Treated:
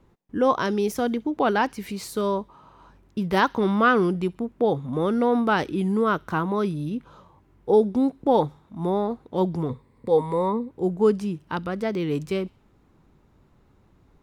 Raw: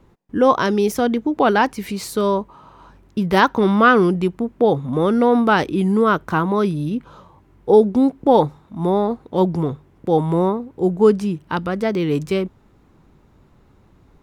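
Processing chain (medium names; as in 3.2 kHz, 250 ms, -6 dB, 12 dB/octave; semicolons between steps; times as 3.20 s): 9.69–10.70 s: rippled EQ curve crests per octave 0.96, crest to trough 12 dB; on a send: feedback echo behind a high-pass 65 ms, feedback 45%, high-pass 2.7 kHz, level -21.5 dB; on the sum: trim -6 dB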